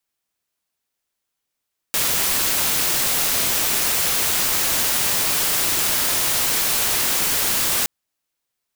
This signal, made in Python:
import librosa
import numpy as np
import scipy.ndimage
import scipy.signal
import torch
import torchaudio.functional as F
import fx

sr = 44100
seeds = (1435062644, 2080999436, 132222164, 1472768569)

y = fx.noise_colour(sr, seeds[0], length_s=5.92, colour='white', level_db=-20.0)